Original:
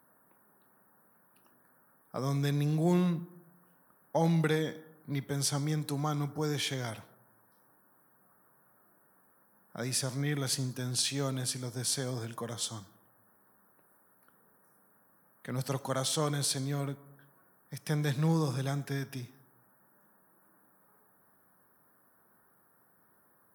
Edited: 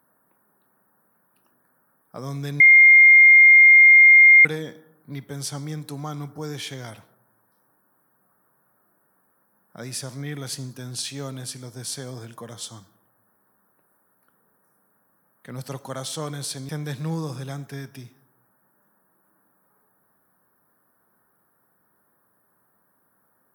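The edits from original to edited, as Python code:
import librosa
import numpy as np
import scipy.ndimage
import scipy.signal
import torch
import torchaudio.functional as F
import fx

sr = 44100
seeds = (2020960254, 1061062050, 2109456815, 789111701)

y = fx.edit(x, sr, fx.bleep(start_s=2.6, length_s=1.85, hz=2120.0, db=-7.5),
    fx.cut(start_s=16.69, length_s=1.18), tone=tone)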